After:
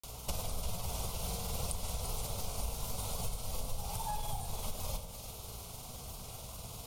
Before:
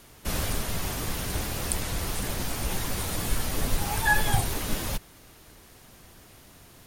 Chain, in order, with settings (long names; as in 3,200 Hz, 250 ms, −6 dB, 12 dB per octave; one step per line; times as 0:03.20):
phaser with its sweep stopped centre 720 Hz, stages 4
downward compressor 16 to 1, threshold −40 dBFS, peak gain reduction 23 dB
mains hum 60 Hz, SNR 19 dB
granular cloud 100 ms, grains 20 per second, spray 38 ms, pitch spread up and down by 0 semitones
echo with a time of its own for lows and highs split 1,800 Hz, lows 98 ms, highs 344 ms, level −9 dB
convolution reverb RT60 1.7 s, pre-delay 3 ms, DRR 12.5 dB
one half of a high-frequency compander encoder only
level +8 dB